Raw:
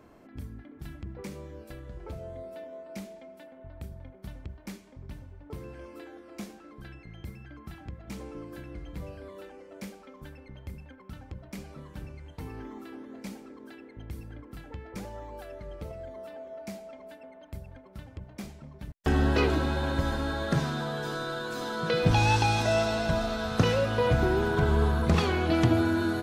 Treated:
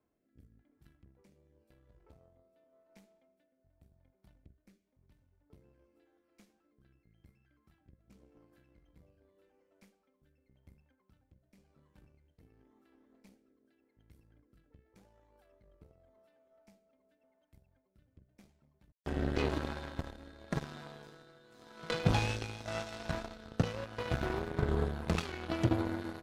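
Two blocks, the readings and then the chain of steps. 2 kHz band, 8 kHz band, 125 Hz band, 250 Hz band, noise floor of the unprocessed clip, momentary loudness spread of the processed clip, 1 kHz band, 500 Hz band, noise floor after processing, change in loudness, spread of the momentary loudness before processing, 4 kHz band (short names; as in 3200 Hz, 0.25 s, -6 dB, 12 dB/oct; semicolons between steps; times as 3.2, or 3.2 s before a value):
-11.0 dB, -10.0 dB, -9.5 dB, -9.5 dB, -52 dBFS, 16 LU, -12.0 dB, -11.0 dB, -78 dBFS, -8.5 dB, 21 LU, -10.0 dB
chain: rotary speaker horn 0.9 Hz; added harmonics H 7 -18 dB, 8 -31 dB, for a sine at -10.5 dBFS; gain -4.5 dB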